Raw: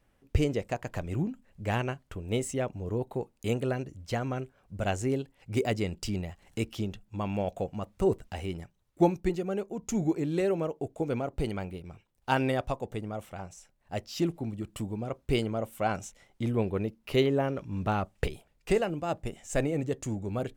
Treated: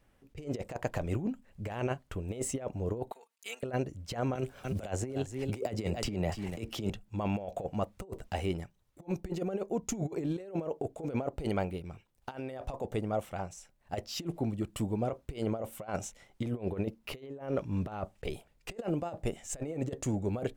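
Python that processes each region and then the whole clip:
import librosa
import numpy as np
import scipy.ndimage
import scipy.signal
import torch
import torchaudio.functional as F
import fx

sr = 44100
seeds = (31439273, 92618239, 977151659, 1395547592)

y = fx.chain(x, sr, fx.highpass(hz=1400.0, slope=12),
    fx.level_steps(step_db=15),
    fx.comb(ms=4.4, depth=0.98), at=(3.12, 3.63))
y = fx.chain(y, sr, fx.echo_single(ms=292, db=-17.5),
    fx.band_squash(depth_pct=100), at=(4.35, 6.9))
y = fx.dynamic_eq(y, sr, hz=600.0, q=0.96, threshold_db=-42.0, ratio=4.0, max_db=6)
y = fx.over_compress(y, sr, threshold_db=-30.0, ratio=-0.5)
y = y * 10.0 ** (-3.0 / 20.0)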